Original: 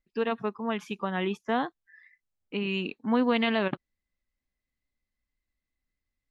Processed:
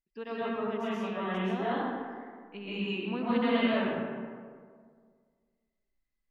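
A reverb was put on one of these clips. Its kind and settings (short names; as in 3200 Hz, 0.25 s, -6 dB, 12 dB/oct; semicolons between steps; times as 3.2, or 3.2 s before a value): digital reverb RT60 1.9 s, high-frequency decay 0.45×, pre-delay 90 ms, DRR -10 dB; gain -12.5 dB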